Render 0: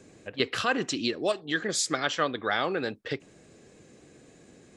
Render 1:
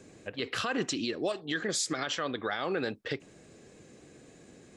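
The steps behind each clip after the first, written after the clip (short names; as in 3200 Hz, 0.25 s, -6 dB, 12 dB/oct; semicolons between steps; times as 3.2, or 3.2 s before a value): limiter -21 dBFS, peak gain reduction 10.5 dB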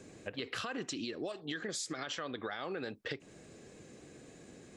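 compressor, threshold -36 dBFS, peak gain reduction 10 dB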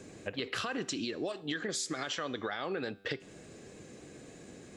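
resonator 98 Hz, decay 1 s, harmonics all, mix 40%; gain +7.5 dB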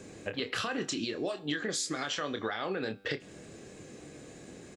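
doubler 27 ms -8 dB; gain +1.5 dB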